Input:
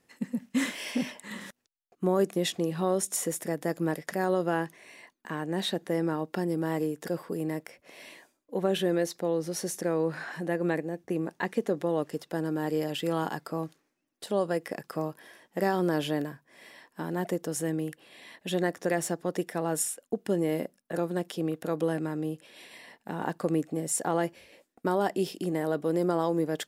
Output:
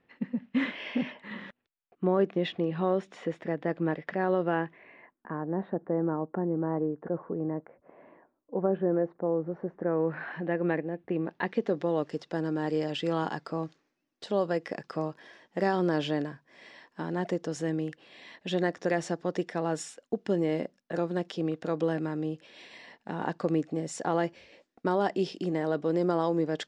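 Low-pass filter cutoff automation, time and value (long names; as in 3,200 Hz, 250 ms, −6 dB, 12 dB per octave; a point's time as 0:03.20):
low-pass filter 24 dB per octave
0:04.54 3,200 Hz
0:05.43 1,300 Hz
0:09.75 1,300 Hz
0:10.27 3,000 Hz
0:11.01 3,000 Hz
0:11.92 6,000 Hz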